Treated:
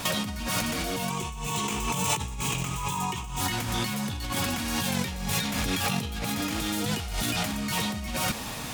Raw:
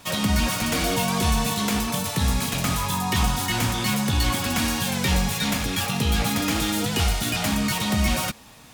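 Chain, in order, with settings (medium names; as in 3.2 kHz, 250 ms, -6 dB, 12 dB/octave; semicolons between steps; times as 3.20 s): 1.10–3.41 s: rippled EQ curve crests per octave 0.7, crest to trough 10 dB; compressor with a negative ratio -33 dBFS, ratio -1; trim +3 dB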